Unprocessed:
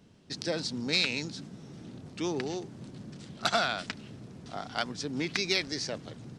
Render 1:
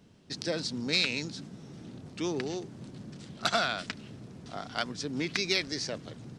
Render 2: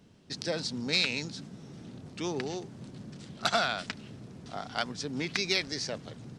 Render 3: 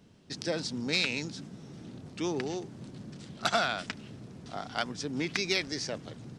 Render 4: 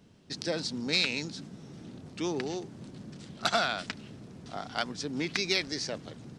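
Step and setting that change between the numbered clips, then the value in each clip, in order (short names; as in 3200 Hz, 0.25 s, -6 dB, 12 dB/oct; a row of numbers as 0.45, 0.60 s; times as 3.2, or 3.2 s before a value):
dynamic EQ, frequency: 820, 320, 4200, 120 Hz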